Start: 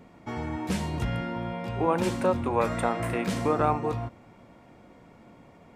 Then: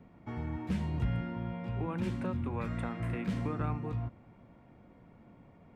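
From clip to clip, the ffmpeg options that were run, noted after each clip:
-filter_complex "[0:a]bass=f=250:g=7,treble=f=4k:g=-12,acrossover=split=320|1300|3000[a][b][c][d];[b]acompressor=threshold=-37dB:ratio=6[e];[a][e][c][d]amix=inputs=4:normalize=0,volume=-8dB"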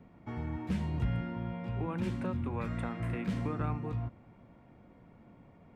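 -af anull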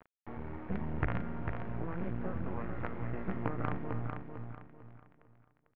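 -af "acrusher=bits=5:dc=4:mix=0:aa=0.000001,lowpass=f=2k:w=0.5412,lowpass=f=2k:w=1.3066,aecho=1:1:448|896|1344|1792:0.501|0.165|0.0546|0.018"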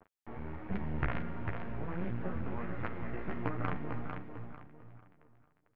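-af "flanger=delay=9.1:depth=5.7:regen=-14:speed=1.4:shape=triangular,adynamicequalizer=threshold=0.00178:dfrequency=1700:dqfactor=0.7:tfrequency=1700:tqfactor=0.7:attack=5:release=100:ratio=0.375:range=2.5:mode=boostabove:tftype=highshelf,volume=2.5dB"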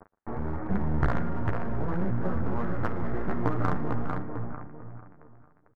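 -filter_complex "[0:a]lowpass=f=1.6k:w=0.5412,lowpass=f=1.6k:w=1.3066,asplit=2[a][b];[b]asoftclip=type=hard:threshold=-36dB,volume=-3dB[c];[a][c]amix=inputs=2:normalize=0,aecho=1:1:117:0.0794,volume=6.5dB"

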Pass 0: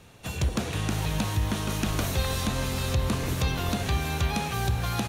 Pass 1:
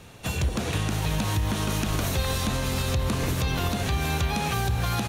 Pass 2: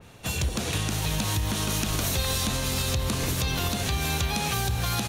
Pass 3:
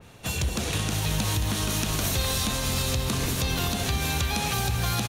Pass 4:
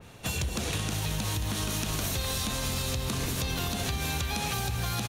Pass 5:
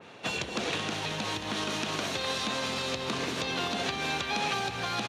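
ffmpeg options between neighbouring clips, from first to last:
-af "alimiter=limit=-21.5dB:level=0:latency=1:release=129,volume=5dB"
-af "adynamicequalizer=threshold=0.00501:dfrequency=2800:dqfactor=0.7:tfrequency=2800:tqfactor=0.7:attack=5:release=100:ratio=0.375:range=3.5:mode=boostabove:tftype=highshelf,volume=-2dB"
-af "aecho=1:1:222:0.335"
-af "acompressor=threshold=-27dB:ratio=6"
-af "highpass=270,lowpass=4.1k,volume=4dB"

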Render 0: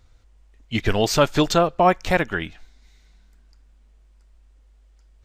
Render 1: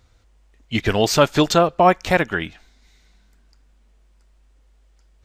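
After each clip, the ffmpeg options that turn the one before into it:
-af "highpass=f=68:p=1,volume=2.5dB"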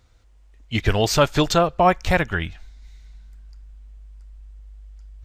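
-af "asubboost=boost=8.5:cutoff=110,volume=-1.5dB"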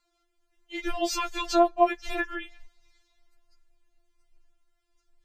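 -af "afftfilt=real='re*4*eq(mod(b,16),0)':imag='im*4*eq(mod(b,16),0)':win_size=2048:overlap=0.75,volume=-6dB"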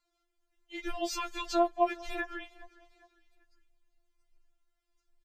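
-af "aecho=1:1:405|810|1215:0.0794|0.0326|0.0134,volume=-6dB"

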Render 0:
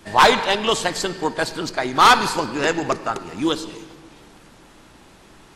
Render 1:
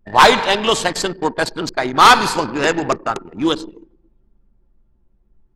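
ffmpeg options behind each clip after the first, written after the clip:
-af "anlmdn=63.1,volume=3.5dB"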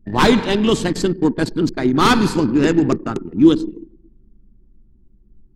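-af "lowshelf=f=440:t=q:w=1.5:g=13,volume=-6dB"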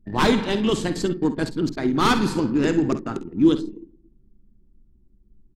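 -af "aecho=1:1:51|65:0.224|0.168,volume=-5.5dB"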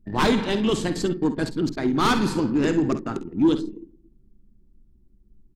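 -af "asoftclip=type=tanh:threshold=-11dB"

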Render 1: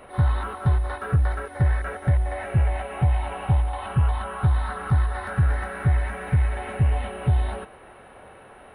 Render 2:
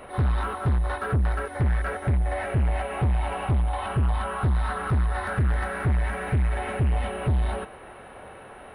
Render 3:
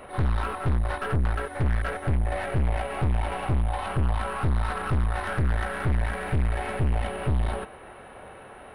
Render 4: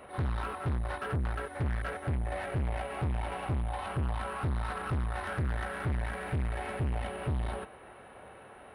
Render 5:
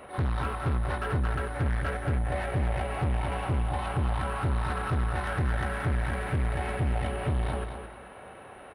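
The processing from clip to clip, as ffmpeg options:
-af "asoftclip=type=tanh:threshold=-21.5dB,volume=3dB"
-af "aeval=exprs='(tanh(14.1*val(0)+0.7)-tanh(0.7))/14.1':c=same,volume=3dB"
-af "highpass=49,volume=-6dB"
-af "aecho=1:1:219|438|657:0.422|0.118|0.0331,volume=3.5dB"

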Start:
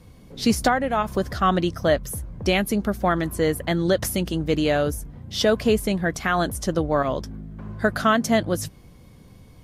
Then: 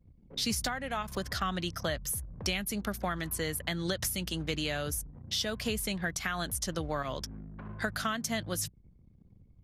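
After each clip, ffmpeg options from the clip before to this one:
-filter_complex "[0:a]anlmdn=0.158,tiltshelf=f=1.1k:g=-8.5,acrossover=split=180[a][b];[b]acompressor=threshold=-32dB:ratio=5[c];[a][c]amix=inputs=2:normalize=0"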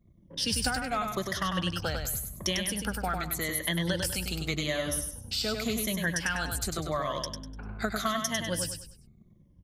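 -af "afftfilt=real='re*pow(10,12/40*sin(2*PI*(1.2*log(max(b,1)*sr/1024/100)/log(2)-(-0.87)*(pts-256)/sr)))':imag='im*pow(10,12/40*sin(2*PI*(1.2*log(max(b,1)*sr/1024/100)/log(2)-(-0.87)*(pts-256)/sr)))':win_size=1024:overlap=0.75,aecho=1:1:99|198|297|396:0.562|0.186|0.0612|0.0202"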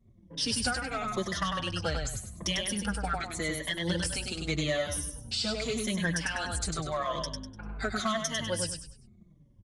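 -filter_complex "[0:a]asoftclip=type=tanh:threshold=-20.5dB,aresample=22050,aresample=44100,asplit=2[a][b];[b]adelay=4.8,afreqshift=-1.9[c];[a][c]amix=inputs=2:normalize=1,volume=3.5dB"

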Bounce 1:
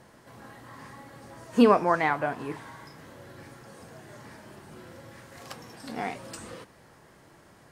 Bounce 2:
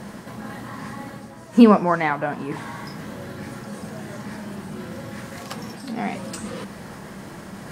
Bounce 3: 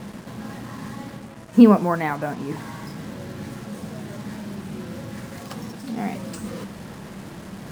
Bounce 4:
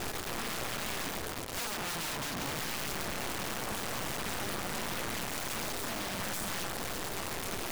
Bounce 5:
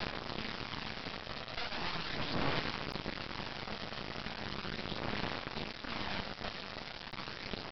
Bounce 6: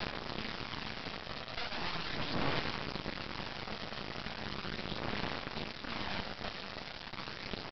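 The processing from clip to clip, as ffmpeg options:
-af "equalizer=f=200:w=3.3:g=12,areverse,acompressor=mode=upward:threshold=-28dB:ratio=2.5,areverse,volume=3dB"
-af "lowshelf=f=490:g=7,acrusher=bits=5:mix=0:aa=0.5,volume=-5dB"
-af "acompressor=threshold=-29dB:ratio=2.5,aeval=exprs='0.15*(cos(1*acos(clip(val(0)/0.15,-1,1)))-cos(1*PI/2))+0.0299*(cos(3*acos(clip(val(0)/0.15,-1,1)))-cos(3*PI/2))+0.0531*(cos(5*acos(clip(val(0)/0.15,-1,1)))-cos(5*PI/2))+0.0473*(cos(6*acos(clip(val(0)/0.15,-1,1)))-cos(6*PI/2))+0.0133*(cos(7*acos(clip(val(0)/0.15,-1,1)))-cos(7*PI/2))':c=same,aeval=exprs='(mod(31.6*val(0)+1,2)-1)/31.6':c=same"
-af "aphaser=in_gain=1:out_gain=1:delay=1.6:decay=0.38:speed=0.38:type=sinusoidal,aresample=11025,acrusher=bits=5:dc=4:mix=0:aa=0.000001,aresample=44100,volume=3dB"
-af "aecho=1:1:198:0.168"

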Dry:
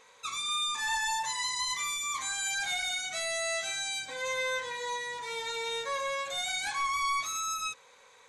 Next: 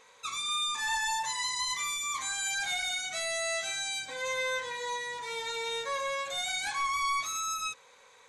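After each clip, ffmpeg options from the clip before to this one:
-af anull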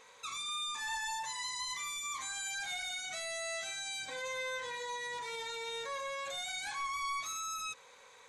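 -af "alimiter=level_in=9dB:limit=-24dB:level=0:latency=1:release=73,volume=-9dB"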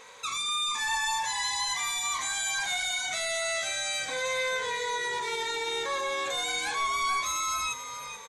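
-filter_complex "[0:a]asplit=6[a][b][c][d][e][f];[b]adelay=434,afreqshift=-72,volume=-10dB[g];[c]adelay=868,afreqshift=-144,volume=-17.3dB[h];[d]adelay=1302,afreqshift=-216,volume=-24.7dB[i];[e]adelay=1736,afreqshift=-288,volume=-32dB[j];[f]adelay=2170,afreqshift=-360,volume=-39.3dB[k];[a][g][h][i][j][k]amix=inputs=6:normalize=0,volume=8.5dB"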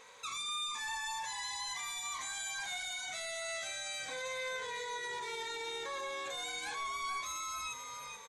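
-af "alimiter=level_in=2dB:limit=-24dB:level=0:latency=1:release=41,volume=-2dB,volume=-6.5dB"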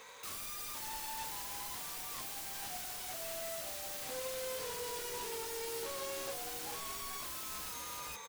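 -filter_complex "[0:a]acrossover=split=180|860[a][b][c];[c]aeval=exprs='(mod(126*val(0)+1,2)-1)/126':c=same[d];[a][b][d]amix=inputs=3:normalize=0,acrusher=bits=2:mode=log:mix=0:aa=0.000001,volume=2.5dB"

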